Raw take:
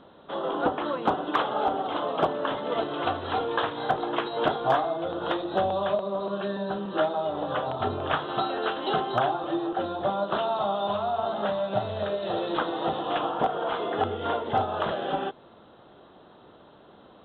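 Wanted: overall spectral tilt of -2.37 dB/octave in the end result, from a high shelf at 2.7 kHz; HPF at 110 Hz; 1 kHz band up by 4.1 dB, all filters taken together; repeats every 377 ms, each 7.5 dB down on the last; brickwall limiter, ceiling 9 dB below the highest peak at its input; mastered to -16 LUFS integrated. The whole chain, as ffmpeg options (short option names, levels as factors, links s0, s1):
-af "highpass=110,equalizer=f=1000:t=o:g=5,highshelf=f=2700:g=5,alimiter=limit=0.158:level=0:latency=1,aecho=1:1:377|754|1131|1508|1885:0.422|0.177|0.0744|0.0312|0.0131,volume=3.16"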